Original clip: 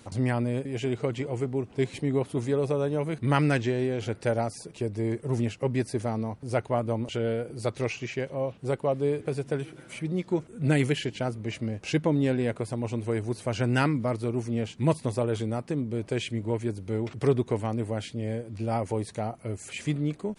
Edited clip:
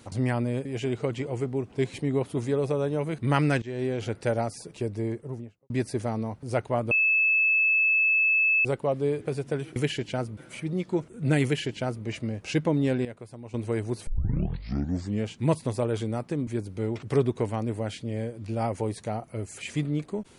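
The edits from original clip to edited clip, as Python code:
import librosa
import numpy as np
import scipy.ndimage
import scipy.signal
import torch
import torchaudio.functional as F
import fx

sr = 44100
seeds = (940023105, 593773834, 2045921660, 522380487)

y = fx.studio_fade_out(x, sr, start_s=4.85, length_s=0.85)
y = fx.edit(y, sr, fx.fade_in_from(start_s=3.62, length_s=0.26, floor_db=-19.0),
    fx.bleep(start_s=6.91, length_s=1.74, hz=2610.0, db=-19.0),
    fx.duplicate(start_s=10.83, length_s=0.61, to_s=9.76),
    fx.clip_gain(start_s=12.44, length_s=0.49, db=-11.5),
    fx.tape_start(start_s=13.46, length_s=1.2),
    fx.cut(start_s=15.86, length_s=0.72), tone=tone)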